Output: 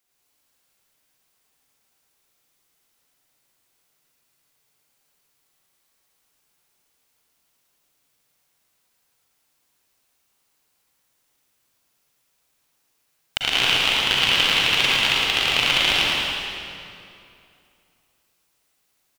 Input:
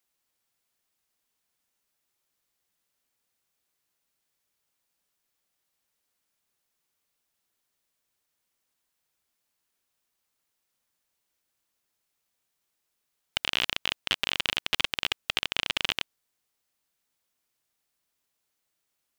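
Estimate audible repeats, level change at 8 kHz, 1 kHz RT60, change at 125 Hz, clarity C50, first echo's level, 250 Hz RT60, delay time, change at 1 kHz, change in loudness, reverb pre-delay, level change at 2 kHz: 1, +10.5 dB, 2.4 s, +12.0 dB, -6.0 dB, -3.0 dB, 2.8 s, 111 ms, +11.5 dB, +10.0 dB, 39 ms, +11.0 dB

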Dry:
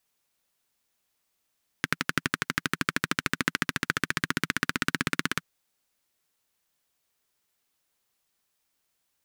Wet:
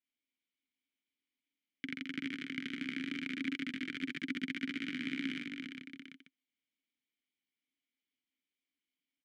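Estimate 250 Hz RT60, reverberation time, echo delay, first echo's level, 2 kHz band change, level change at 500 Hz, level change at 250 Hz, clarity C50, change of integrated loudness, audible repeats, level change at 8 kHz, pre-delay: no reverb, no reverb, 46 ms, -4.5 dB, -12.5 dB, -14.5 dB, -3.0 dB, no reverb, -10.5 dB, 5, -25.0 dB, no reverb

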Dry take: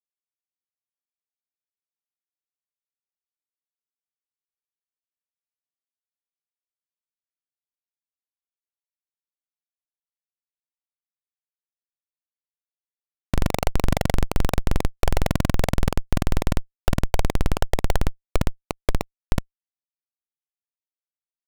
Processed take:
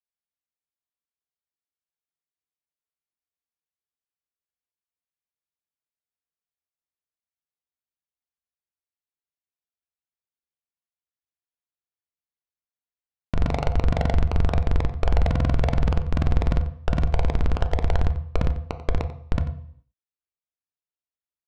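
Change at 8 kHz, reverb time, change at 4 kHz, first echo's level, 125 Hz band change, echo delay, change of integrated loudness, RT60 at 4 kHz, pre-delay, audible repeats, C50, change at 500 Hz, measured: -14.0 dB, 0.60 s, -6.5 dB, -15.0 dB, +2.5 dB, 91 ms, +1.0 dB, 0.65 s, 3 ms, 1, 10.5 dB, -2.0 dB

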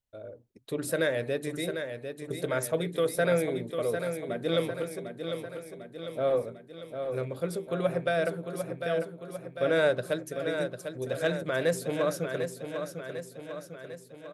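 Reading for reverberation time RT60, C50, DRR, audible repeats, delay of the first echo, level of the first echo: no reverb, no reverb, no reverb, 6, 749 ms, -7.5 dB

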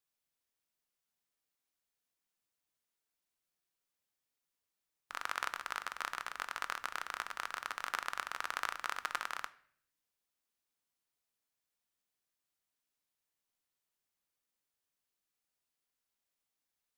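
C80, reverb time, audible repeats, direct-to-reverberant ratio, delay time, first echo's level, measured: 21.0 dB, 0.60 s, no echo, 12.0 dB, no echo, no echo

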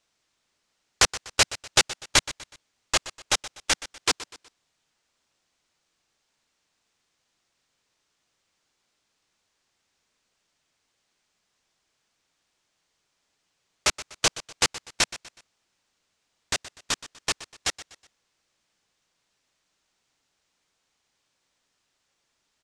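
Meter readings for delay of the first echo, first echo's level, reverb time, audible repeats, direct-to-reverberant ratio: 123 ms, -16.0 dB, no reverb, 3, no reverb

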